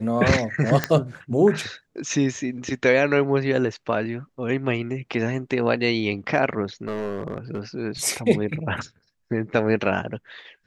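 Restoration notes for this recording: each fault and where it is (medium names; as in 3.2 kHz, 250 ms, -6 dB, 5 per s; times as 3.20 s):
0.84 s: pop -6 dBFS
6.88–7.59 s: clipped -21.5 dBFS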